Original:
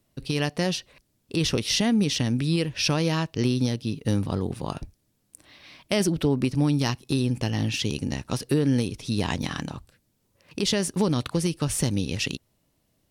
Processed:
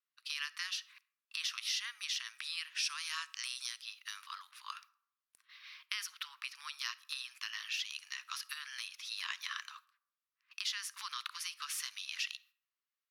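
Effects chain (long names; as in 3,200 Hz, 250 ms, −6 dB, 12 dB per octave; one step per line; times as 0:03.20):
Butterworth high-pass 1,100 Hz 72 dB per octave
noise gate −55 dBFS, range −10 dB
parametric band 8,400 Hz −6.5 dB 0.6 octaves, from 0:02.75 +7 dB, from 0:03.81 −11 dB
downward compressor 2.5 to 1, threshold −34 dBFS, peak gain reduction 9.5 dB
convolution reverb RT60 0.75 s, pre-delay 10 ms, DRR 19.5 dB
one half of a high-frequency compander decoder only
level −2.5 dB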